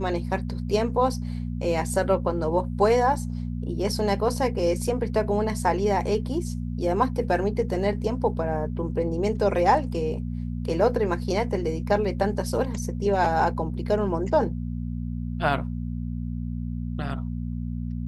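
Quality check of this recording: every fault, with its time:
mains hum 60 Hz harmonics 4 −30 dBFS

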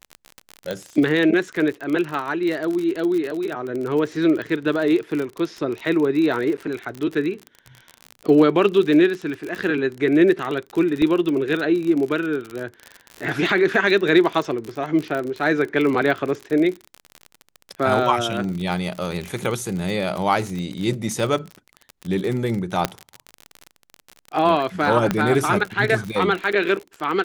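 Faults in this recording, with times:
surface crackle 43 per second −25 dBFS
0:00.71: click −13 dBFS
0:06.57–0:06.58: drop-out 8.6 ms
0:11.02: drop-out 2.3 ms
0:22.85: click −4 dBFS
0:25.11: click −6 dBFS

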